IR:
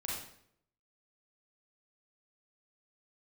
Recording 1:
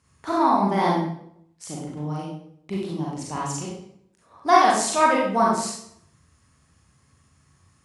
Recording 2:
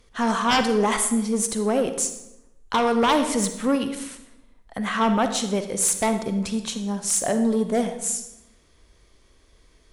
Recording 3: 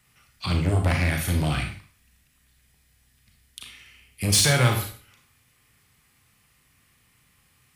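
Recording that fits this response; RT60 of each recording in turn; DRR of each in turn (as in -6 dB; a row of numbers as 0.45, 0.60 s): 1; 0.70, 0.90, 0.45 s; -5.0, 7.5, 3.0 dB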